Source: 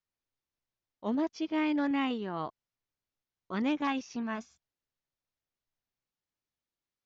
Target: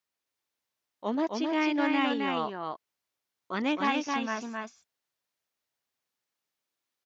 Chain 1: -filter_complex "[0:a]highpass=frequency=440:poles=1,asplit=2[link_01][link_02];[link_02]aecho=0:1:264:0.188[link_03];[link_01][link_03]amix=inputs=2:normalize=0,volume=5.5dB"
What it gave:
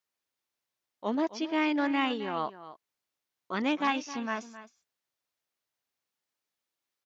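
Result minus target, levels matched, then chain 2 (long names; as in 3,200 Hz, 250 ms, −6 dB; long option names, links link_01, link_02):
echo-to-direct −11 dB
-filter_complex "[0:a]highpass=frequency=440:poles=1,asplit=2[link_01][link_02];[link_02]aecho=0:1:264:0.668[link_03];[link_01][link_03]amix=inputs=2:normalize=0,volume=5.5dB"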